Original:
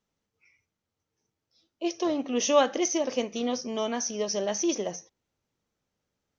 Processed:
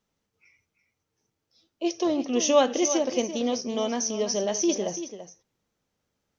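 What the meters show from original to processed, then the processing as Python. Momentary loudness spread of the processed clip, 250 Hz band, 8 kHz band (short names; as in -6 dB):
11 LU, +3.0 dB, n/a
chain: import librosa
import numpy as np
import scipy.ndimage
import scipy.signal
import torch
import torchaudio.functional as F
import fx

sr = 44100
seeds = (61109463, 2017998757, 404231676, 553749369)

p1 = fx.dynamic_eq(x, sr, hz=1500.0, q=0.88, threshold_db=-45.0, ratio=4.0, max_db=-5)
p2 = p1 + fx.echo_single(p1, sr, ms=336, db=-11.5, dry=0)
y = p2 * librosa.db_to_amplitude(3.0)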